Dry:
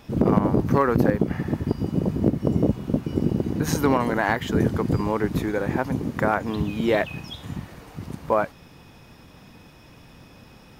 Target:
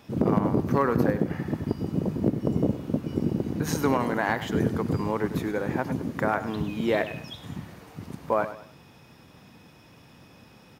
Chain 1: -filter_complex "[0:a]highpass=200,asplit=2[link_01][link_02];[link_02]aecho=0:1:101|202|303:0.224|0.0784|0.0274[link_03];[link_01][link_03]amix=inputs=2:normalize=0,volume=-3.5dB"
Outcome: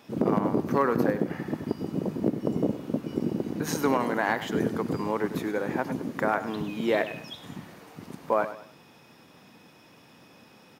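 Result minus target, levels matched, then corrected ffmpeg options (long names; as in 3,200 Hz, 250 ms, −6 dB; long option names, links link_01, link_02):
125 Hz band −5.0 dB
-filter_complex "[0:a]highpass=85,asplit=2[link_01][link_02];[link_02]aecho=0:1:101|202|303:0.224|0.0784|0.0274[link_03];[link_01][link_03]amix=inputs=2:normalize=0,volume=-3.5dB"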